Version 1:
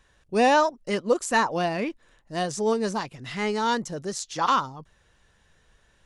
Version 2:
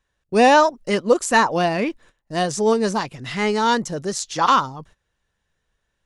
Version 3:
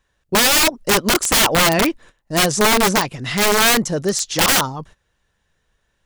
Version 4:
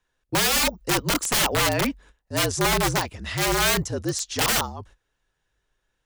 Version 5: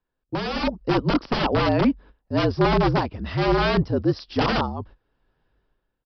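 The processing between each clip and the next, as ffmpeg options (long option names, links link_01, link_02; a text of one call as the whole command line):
ffmpeg -i in.wav -af "agate=range=-18dB:threshold=-52dB:ratio=16:detection=peak,volume=6dB" out.wav
ffmpeg -i in.wav -af "aeval=exprs='(mod(5.62*val(0)+1,2)-1)/5.62':channel_layout=same,volume=6dB" out.wav
ffmpeg -i in.wav -af "afreqshift=-54,volume=-7dB" out.wav
ffmpeg -i in.wav -af "aresample=11025,aresample=44100,dynaudnorm=framelen=120:gausssize=9:maxgain=14dB,equalizer=frequency=250:width_type=o:width=1:gain=5,equalizer=frequency=2000:width_type=o:width=1:gain=-7,equalizer=frequency=4000:width_type=o:width=1:gain=-9,volume=-5dB" out.wav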